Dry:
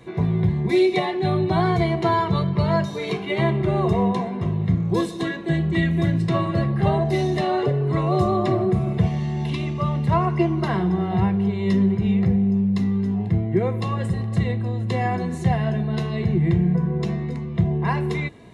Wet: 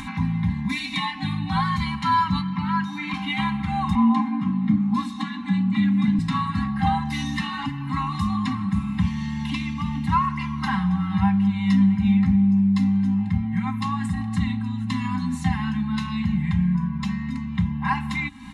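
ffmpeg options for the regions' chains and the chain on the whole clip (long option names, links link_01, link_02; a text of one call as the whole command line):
ffmpeg -i in.wav -filter_complex "[0:a]asettb=1/sr,asplit=3[link_01][link_02][link_03];[link_01]atrim=end=2.414[link_04];[link_02]atrim=start=2.41:end=3.14,asetpts=PTS-STARTPTS,afade=type=in:duration=0.004:curve=qsin,afade=type=out:start_time=0.726:duration=0.004:curve=qsin,highpass=160,acrossover=split=2900[link_05][link_06];[link_06]acompressor=threshold=-54dB:ratio=4:attack=1:release=60[link_07];[link_05][link_07]amix=inputs=2:normalize=0[link_08];[link_03]atrim=start=3.136[link_09];[link_04][link_08]acrossfade=duration=0.004:curve1=hsin:curve2=qsin[link_10];[link_10][link_09]acrossfade=duration=0.004:curve1=qsin:curve2=hsin,asettb=1/sr,asplit=3[link_11][link_12][link_13];[link_11]atrim=end=3.954[link_14];[link_12]atrim=start=3.95:end=6.19,asetpts=PTS-STARTPTS,afade=type=in:duration=0.004:curve=qsin,afade=type=out:start_time=2.236:duration=0.004:curve=qsin,lowpass=frequency=2600:poles=1,afreqshift=33[link_15];[link_13]atrim=start=6.186[link_16];[link_14][link_15]acrossfade=duration=0.004:curve1=hsin:curve2=qsin[link_17];[link_17][link_16]acrossfade=duration=0.004:curve1=qsin:curve2=hsin,afftfilt=real='re*(1-between(b*sr/4096,300,770))':imag='im*(1-between(b*sr/4096,300,770))':win_size=4096:overlap=0.75,aecho=1:1:3.8:0.78,acompressor=mode=upward:threshold=-24dB:ratio=2.5" out.wav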